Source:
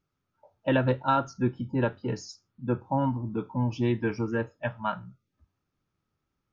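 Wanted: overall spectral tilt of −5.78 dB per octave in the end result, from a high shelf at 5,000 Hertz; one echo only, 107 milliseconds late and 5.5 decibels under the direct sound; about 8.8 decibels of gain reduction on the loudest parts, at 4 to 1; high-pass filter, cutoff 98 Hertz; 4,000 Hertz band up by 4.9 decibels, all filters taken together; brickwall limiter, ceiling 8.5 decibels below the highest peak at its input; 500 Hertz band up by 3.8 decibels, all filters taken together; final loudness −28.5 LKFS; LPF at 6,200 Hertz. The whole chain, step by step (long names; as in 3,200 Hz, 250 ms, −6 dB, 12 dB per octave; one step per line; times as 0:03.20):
high-pass filter 98 Hz
low-pass filter 6,200 Hz
parametric band 500 Hz +4.5 dB
parametric band 4,000 Hz +4 dB
high-shelf EQ 5,000 Hz +7.5 dB
downward compressor 4 to 1, threshold −28 dBFS
brickwall limiter −24 dBFS
single-tap delay 107 ms −5.5 dB
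level +6.5 dB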